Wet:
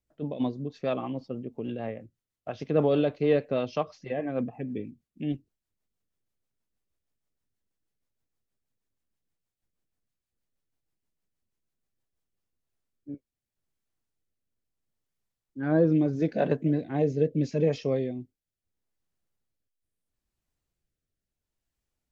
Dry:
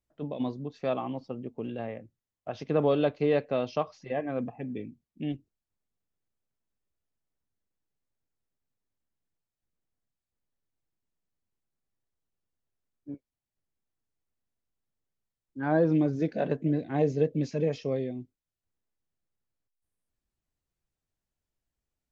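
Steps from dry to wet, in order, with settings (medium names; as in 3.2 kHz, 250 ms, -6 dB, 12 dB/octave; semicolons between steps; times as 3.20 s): rotary cabinet horn 6.3 Hz, later 0.75 Hz, at 12.00 s; trim +3.5 dB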